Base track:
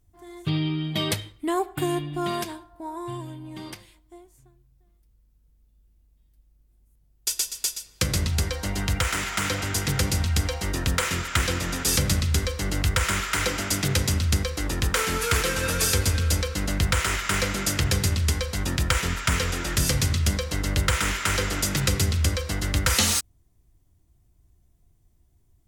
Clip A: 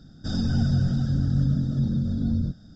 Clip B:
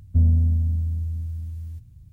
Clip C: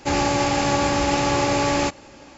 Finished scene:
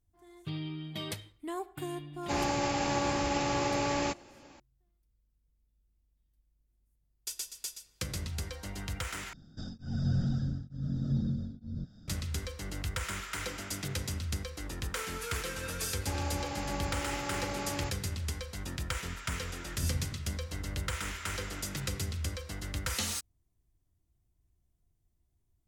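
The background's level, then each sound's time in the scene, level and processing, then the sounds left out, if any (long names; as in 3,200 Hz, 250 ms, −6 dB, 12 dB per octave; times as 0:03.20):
base track −12.5 dB
0:02.23: mix in C −10 dB
0:09.33: overwrite with A −6 dB + tremolo along a rectified sine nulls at 1.1 Hz
0:16.00: mix in C −17 dB
0:19.67: mix in B −16 dB + reverb reduction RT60 0.6 s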